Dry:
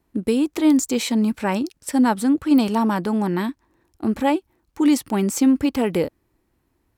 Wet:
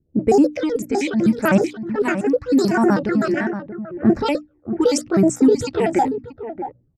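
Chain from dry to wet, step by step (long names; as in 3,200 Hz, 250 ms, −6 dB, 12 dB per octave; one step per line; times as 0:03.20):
pitch shifter gated in a rhythm +8.5 semitones, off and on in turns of 63 ms
low-pass that shuts in the quiet parts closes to 1,400 Hz, open at −14 dBFS
elliptic low-pass filter 12,000 Hz, stop band 40 dB
mains-hum notches 60/120/180/240/300 Hz
noise reduction from a noise print of the clip's start 6 dB
thirty-one-band graphic EQ 125 Hz +11 dB, 1,000 Hz −9 dB, 3,150 Hz −6 dB, 5,000 Hz +5 dB
brickwall limiter −15 dBFS, peak gain reduction 7 dB
speech leveller 0.5 s
all-pass phaser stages 8, 0.8 Hz, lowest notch 140–4,200 Hz
single-tap delay 632 ms −10.5 dB
low-pass that shuts in the quiet parts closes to 460 Hz, open at −22.5 dBFS
level +8.5 dB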